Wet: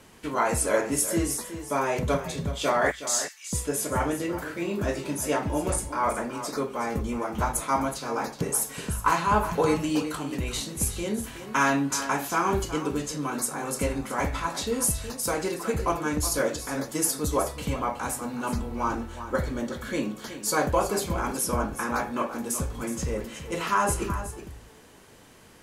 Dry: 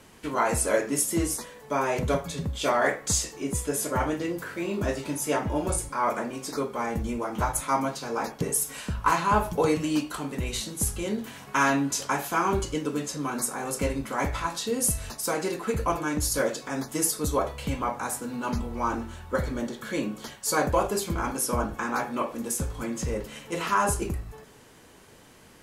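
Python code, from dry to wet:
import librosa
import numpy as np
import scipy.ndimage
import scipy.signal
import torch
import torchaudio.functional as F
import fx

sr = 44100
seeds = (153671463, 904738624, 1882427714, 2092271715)

y = fx.bessel_highpass(x, sr, hz=2300.0, order=4, at=(2.91, 3.53))
y = y + 10.0 ** (-11.5 / 20.0) * np.pad(y, (int(370 * sr / 1000.0), 0))[:len(y)]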